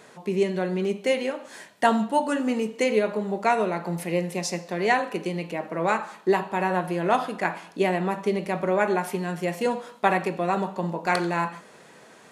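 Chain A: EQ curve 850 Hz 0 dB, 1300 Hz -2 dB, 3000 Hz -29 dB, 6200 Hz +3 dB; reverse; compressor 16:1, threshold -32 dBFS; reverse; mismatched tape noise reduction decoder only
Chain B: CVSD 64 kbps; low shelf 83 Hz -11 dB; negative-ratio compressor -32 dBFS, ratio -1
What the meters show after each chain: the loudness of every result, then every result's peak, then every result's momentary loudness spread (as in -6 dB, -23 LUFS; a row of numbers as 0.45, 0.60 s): -37.0, -32.0 LUFS; -21.0, -16.0 dBFS; 3, 5 LU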